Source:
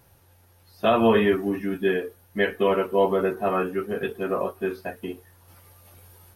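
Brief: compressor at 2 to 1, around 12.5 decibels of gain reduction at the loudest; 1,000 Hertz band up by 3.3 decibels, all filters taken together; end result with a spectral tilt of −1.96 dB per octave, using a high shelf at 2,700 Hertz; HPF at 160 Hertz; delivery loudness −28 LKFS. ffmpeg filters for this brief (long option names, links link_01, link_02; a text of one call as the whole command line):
ffmpeg -i in.wav -af "highpass=160,equalizer=frequency=1000:width_type=o:gain=5.5,highshelf=frequency=2700:gain=-7,acompressor=threshold=-37dB:ratio=2,volume=6dB" out.wav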